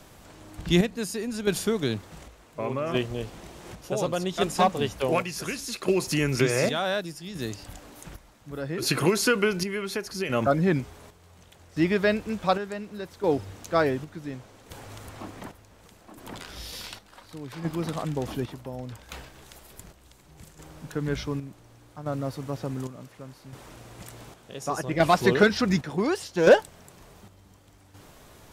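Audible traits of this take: chopped level 0.68 Hz, depth 60%, duty 55%

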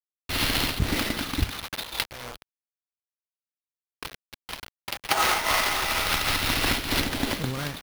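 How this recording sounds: a quantiser's noise floor 6-bit, dither none; phasing stages 2, 0.32 Hz, lowest notch 170–1100 Hz; aliases and images of a low sample rate 7.6 kHz, jitter 20%; random flutter of the level

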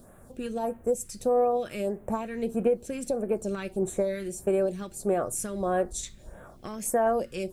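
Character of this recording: a quantiser's noise floor 12-bit, dither triangular; phasing stages 2, 1.6 Hz, lowest notch 680–4600 Hz

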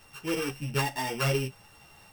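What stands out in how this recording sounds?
a buzz of ramps at a fixed pitch in blocks of 16 samples; a shimmering, thickened sound

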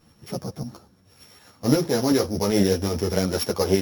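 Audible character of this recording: a buzz of ramps at a fixed pitch in blocks of 8 samples; tremolo saw up 8 Hz, depth 45%; a shimmering, thickened sound

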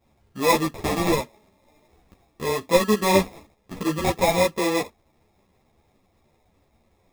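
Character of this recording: aliases and images of a low sample rate 1.5 kHz, jitter 0%; a shimmering, thickened sound

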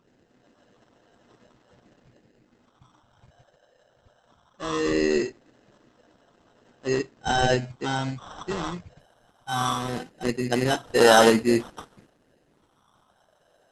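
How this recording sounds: phasing stages 4, 0.2 Hz, lowest notch 250–3400 Hz; aliases and images of a low sample rate 2.3 kHz, jitter 0%; Opus

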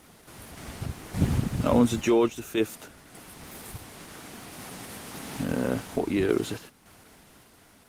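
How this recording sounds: random-step tremolo; Opus

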